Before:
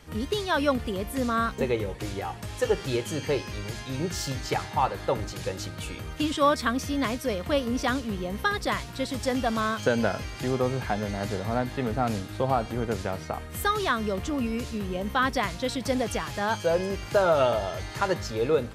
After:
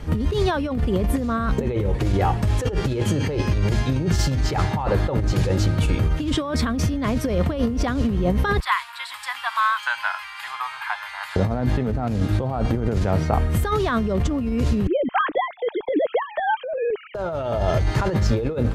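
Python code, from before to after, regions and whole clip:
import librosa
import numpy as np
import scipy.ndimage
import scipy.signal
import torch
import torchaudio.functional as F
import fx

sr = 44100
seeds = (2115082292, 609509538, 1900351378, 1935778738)

y = fx.chain(x, sr, fx.ellip_highpass(hz=950.0, order=4, stop_db=50),
    fx.peak_eq(hz=6000.0, db=-12.5, octaves=0.57), at=(8.6, 11.36))
y = fx.chain(y, sr, fx.sine_speech(),
    fx.tremolo_shape(shape='saw_up', hz=5.9, depth_pct=50), at=(14.87, 17.15))
y = fx.tilt_eq(y, sr, slope=-2.5)
y = fx.over_compress(y, sr, threshold_db=-28.0, ratio=-1.0)
y = F.gain(torch.from_numpy(y), 7.0).numpy()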